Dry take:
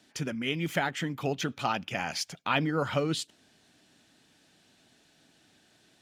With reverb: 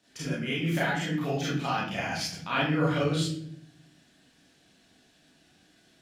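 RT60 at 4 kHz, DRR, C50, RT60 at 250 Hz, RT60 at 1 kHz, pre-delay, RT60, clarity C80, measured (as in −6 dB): 0.45 s, −8.0 dB, 1.0 dB, 1.0 s, 0.50 s, 31 ms, 0.65 s, 6.0 dB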